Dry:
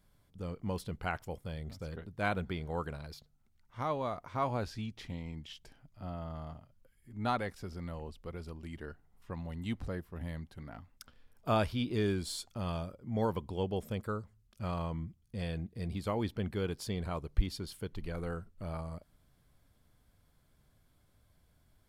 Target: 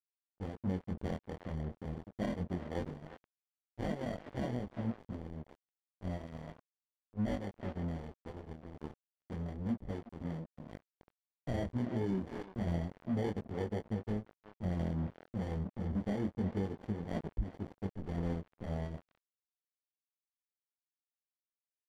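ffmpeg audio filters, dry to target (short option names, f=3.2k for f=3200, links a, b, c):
-filter_complex "[0:a]lowpass=5.6k,acrossover=split=480[a][b];[b]acrusher=samples=34:mix=1:aa=0.000001[c];[a][c]amix=inputs=2:normalize=0,flanger=delay=18.5:depth=7.8:speed=0.29,adynamicequalizer=threshold=0.00178:dfrequency=220:dqfactor=3:tfrequency=220:tqfactor=3:attack=5:release=100:ratio=0.375:range=3.5:mode=boostabove:tftype=bell,asplit=2[d][e];[e]adelay=350,highpass=300,lowpass=3.4k,asoftclip=type=hard:threshold=-29.5dB,volume=-10dB[f];[d][f]amix=inputs=2:normalize=0,aeval=exprs='sgn(val(0))*max(abs(val(0))-0.00447,0)':c=same,aemphasis=mode=reproduction:type=75fm,alimiter=level_in=7dB:limit=-24dB:level=0:latency=1:release=315,volume=-7dB,volume=5.5dB"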